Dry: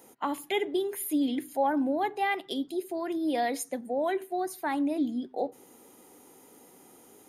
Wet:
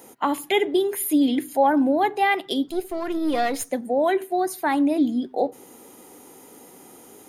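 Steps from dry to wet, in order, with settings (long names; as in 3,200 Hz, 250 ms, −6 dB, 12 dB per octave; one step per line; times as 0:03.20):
0:02.69–0:03.71: gain on one half-wave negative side −7 dB
level +8 dB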